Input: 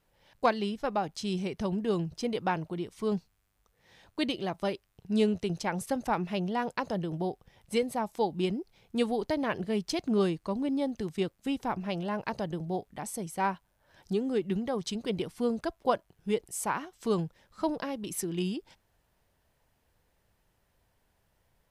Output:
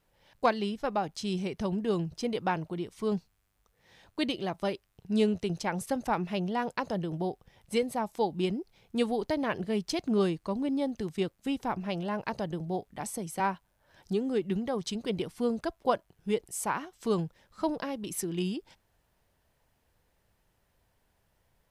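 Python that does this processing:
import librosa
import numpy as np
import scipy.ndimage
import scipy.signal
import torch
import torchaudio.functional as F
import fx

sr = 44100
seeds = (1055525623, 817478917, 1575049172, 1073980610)

y = fx.band_squash(x, sr, depth_pct=70, at=(13.0, 13.4))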